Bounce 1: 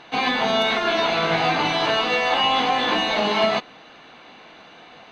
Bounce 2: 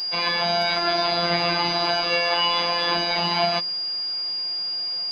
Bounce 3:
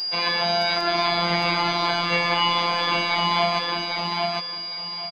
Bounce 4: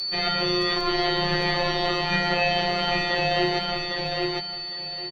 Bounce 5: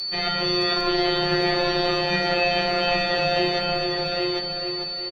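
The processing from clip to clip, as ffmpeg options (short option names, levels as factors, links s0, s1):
-af "aeval=exprs='val(0)+0.0708*sin(2*PI*4800*n/s)':c=same,bandreject=f=75.98:t=h:w=4,bandreject=f=151.96:t=h:w=4,bandreject=f=227.94:t=h:w=4,bandreject=f=303.92:t=h:w=4,bandreject=f=379.9:t=h:w=4,bandreject=f=455.88:t=h:w=4,bandreject=f=531.86:t=h:w=4,bandreject=f=607.84:t=h:w=4,afftfilt=real='hypot(re,im)*cos(PI*b)':imag='0':win_size=1024:overlap=0.75"
-af "aecho=1:1:806|1612|2418:0.708|0.17|0.0408"
-af "afreqshift=-330,volume=0.841"
-filter_complex "[0:a]asplit=2[s0][s1];[s1]adelay=446,lowpass=f=4100:p=1,volume=0.596,asplit=2[s2][s3];[s3]adelay=446,lowpass=f=4100:p=1,volume=0.41,asplit=2[s4][s5];[s5]adelay=446,lowpass=f=4100:p=1,volume=0.41,asplit=2[s6][s7];[s7]adelay=446,lowpass=f=4100:p=1,volume=0.41,asplit=2[s8][s9];[s9]adelay=446,lowpass=f=4100:p=1,volume=0.41[s10];[s0][s2][s4][s6][s8][s10]amix=inputs=6:normalize=0"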